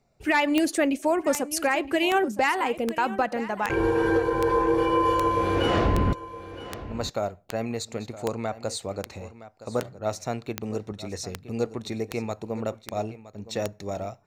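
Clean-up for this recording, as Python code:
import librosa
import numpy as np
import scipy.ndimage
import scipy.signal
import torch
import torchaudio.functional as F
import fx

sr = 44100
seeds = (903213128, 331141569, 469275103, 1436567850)

y = fx.fix_declick_ar(x, sr, threshold=10.0)
y = fx.fix_echo_inverse(y, sr, delay_ms=966, level_db=-15.5)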